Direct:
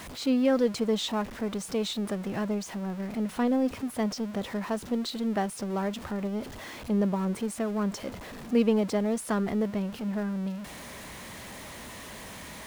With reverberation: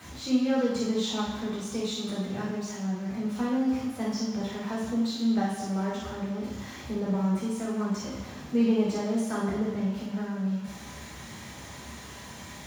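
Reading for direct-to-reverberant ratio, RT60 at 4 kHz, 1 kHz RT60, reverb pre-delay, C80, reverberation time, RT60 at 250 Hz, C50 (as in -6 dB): -6.0 dB, 1.2 s, 1.1 s, 3 ms, 4.0 dB, 1.0 s, 1.0 s, 0.5 dB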